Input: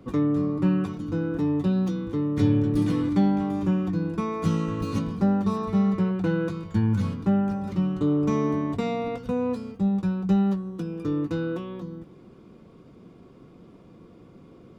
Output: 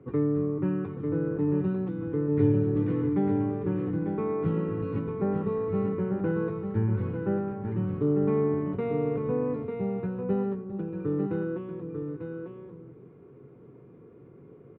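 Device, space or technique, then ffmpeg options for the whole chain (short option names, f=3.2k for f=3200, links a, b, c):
bass cabinet: -af "highpass=66,equalizer=f=130:t=q:w=4:g=9,equalizer=f=200:t=q:w=4:g=-5,equalizer=f=420:t=q:w=4:g=10,equalizer=f=650:t=q:w=4:g=-4,equalizer=f=1.1k:t=q:w=4:g=-3,lowpass=f=2.2k:w=0.5412,lowpass=f=2.2k:w=1.3066,aecho=1:1:765|896:0.112|0.501,volume=-5dB"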